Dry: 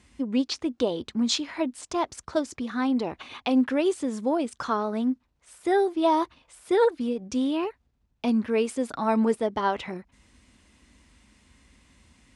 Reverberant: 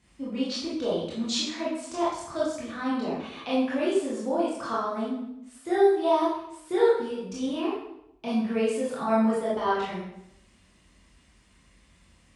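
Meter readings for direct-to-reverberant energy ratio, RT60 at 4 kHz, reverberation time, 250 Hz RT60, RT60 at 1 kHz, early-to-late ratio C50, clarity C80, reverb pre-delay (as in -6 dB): -8.0 dB, 0.65 s, 0.80 s, 0.95 s, 0.75 s, 0.5 dB, 4.5 dB, 18 ms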